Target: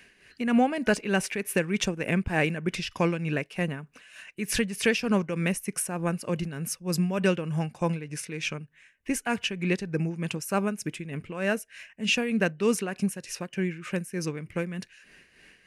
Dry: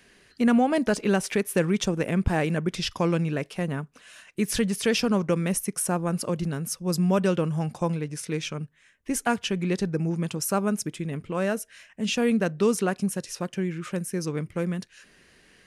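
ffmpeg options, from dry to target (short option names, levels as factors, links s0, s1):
-af "tremolo=f=3.3:d=0.63,superequalizer=11b=1.78:12b=2.24"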